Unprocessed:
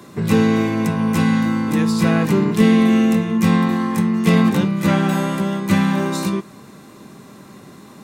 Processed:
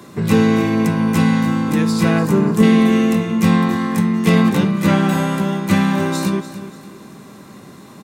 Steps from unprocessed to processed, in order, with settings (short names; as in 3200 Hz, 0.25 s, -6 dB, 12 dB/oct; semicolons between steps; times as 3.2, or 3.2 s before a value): 2.19–2.63 band shelf 3100 Hz -8.5 dB; feedback echo 0.292 s, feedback 37%, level -13.5 dB; gain +1.5 dB